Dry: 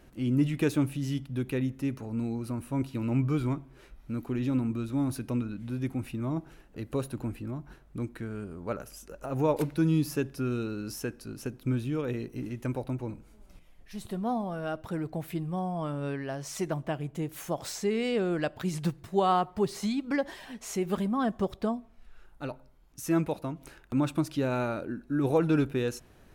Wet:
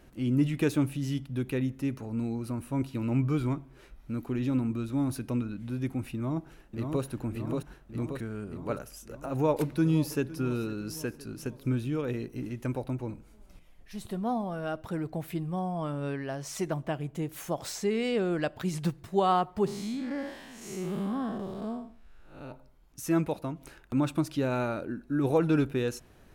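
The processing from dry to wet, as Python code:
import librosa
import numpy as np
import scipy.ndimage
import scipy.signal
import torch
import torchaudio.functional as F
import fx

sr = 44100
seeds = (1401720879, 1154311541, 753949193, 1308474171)

y = fx.echo_throw(x, sr, start_s=6.15, length_s=0.89, ms=580, feedback_pct=65, wet_db=-4.0)
y = fx.echo_throw(y, sr, start_s=9.34, length_s=0.96, ms=510, feedback_pct=55, wet_db=-17.5)
y = fx.spec_blur(y, sr, span_ms=194.0, at=(19.66, 22.51), fade=0.02)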